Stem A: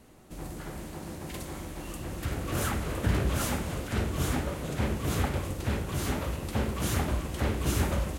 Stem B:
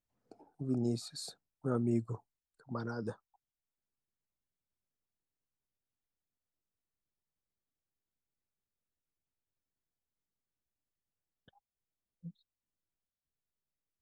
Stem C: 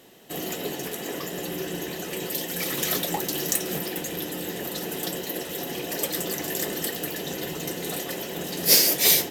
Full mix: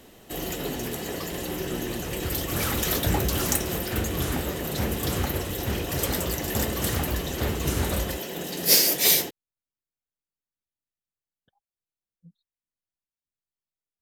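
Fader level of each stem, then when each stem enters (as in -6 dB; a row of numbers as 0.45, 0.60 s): +0.5, -5.0, -1.0 dB; 0.00, 0.00, 0.00 s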